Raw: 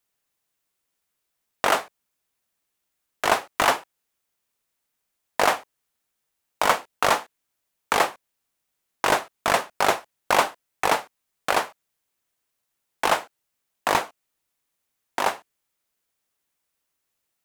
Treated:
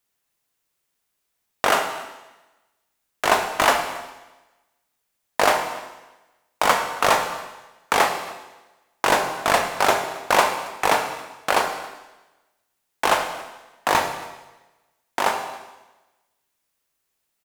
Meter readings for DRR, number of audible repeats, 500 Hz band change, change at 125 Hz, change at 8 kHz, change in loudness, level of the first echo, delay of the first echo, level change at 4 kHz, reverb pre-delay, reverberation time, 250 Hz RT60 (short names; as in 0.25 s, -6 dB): 4.5 dB, 1, +3.0 dB, +3.0 dB, +3.0 dB, +2.5 dB, -22.0 dB, 0.274 s, +3.0 dB, 23 ms, 1.1 s, 1.1 s